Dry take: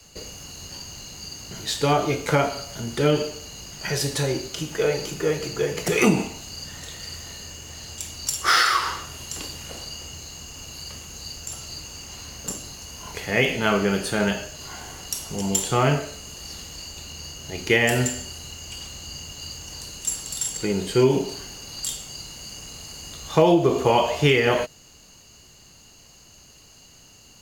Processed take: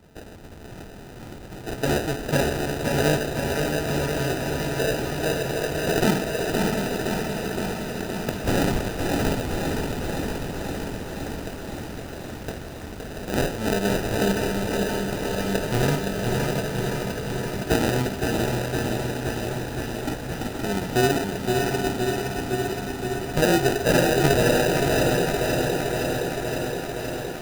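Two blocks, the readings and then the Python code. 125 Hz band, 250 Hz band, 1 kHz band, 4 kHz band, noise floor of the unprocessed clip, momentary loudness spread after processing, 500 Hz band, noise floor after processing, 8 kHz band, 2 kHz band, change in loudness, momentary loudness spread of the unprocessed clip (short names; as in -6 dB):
+2.5 dB, +2.5 dB, -1.0 dB, -2.5 dB, -51 dBFS, 14 LU, +1.0 dB, -38 dBFS, -4.5 dB, -0.5 dB, -0.5 dB, 17 LU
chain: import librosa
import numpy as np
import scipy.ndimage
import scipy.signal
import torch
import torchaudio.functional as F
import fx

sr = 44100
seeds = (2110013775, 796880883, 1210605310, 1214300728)

y = fx.echo_diffused(x, sr, ms=664, feedback_pct=51, wet_db=-3.5)
y = fx.sample_hold(y, sr, seeds[0], rate_hz=1100.0, jitter_pct=0)
y = fx.echo_crushed(y, sr, ms=517, feedback_pct=80, bits=7, wet_db=-5)
y = F.gain(torch.from_numpy(y), -3.0).numpy()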